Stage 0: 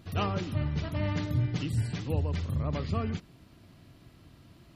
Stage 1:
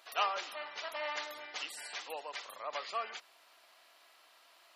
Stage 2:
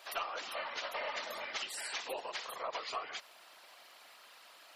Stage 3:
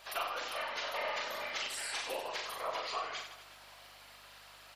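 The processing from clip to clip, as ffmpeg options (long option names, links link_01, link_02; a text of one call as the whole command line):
ffmpeg -i in.wav -af "highpass=frequency=680:width=0.5412,highpass=frequency=680:width=1.3066,volume=2.5dB" out.wav
ffmpeg -i in.wav -af "acompressor=threshold=-41dB:ratio=12,afftfilt=real='hypot(re,im)*cos(2*PI*random(0))':imag='hypot(re,im)*sin(2*PI*random(1))':win_size=512:overlap=0.75,aeval=exprs='0.0126*(cos(1*acos(clip(val(0)/0.0126,-1,1)))-cos(1*PI/2))+0.000398*(cos(2*acos(clip(val(0)/0.0126,-1,1)))-cos(2*PI/2))':channel_layout=same,volume=11.5dB" out.wav
ffmpeg -i in.wav -filter_complex "[0:a]aeval=exprs='val(0)+0.0002*(sin(2*PI*50*n/s)+sin(2*PI*2*50*n/s)/2+sin(2*PI*3*50*n/s)/3+sin(2*PI*4*50*n/s)/4+sin(2*PI*5*50*n/s)/5)':channel_layout=same,asplit=2[link_01][link_02];[link_02]aecho=0:1:40|92|159.6|247.5|361.7:0.631|0.398|0.251|0.158|0.1[link_03];[link_01][link_03]amix=inputs=2:normalize=0" out.wav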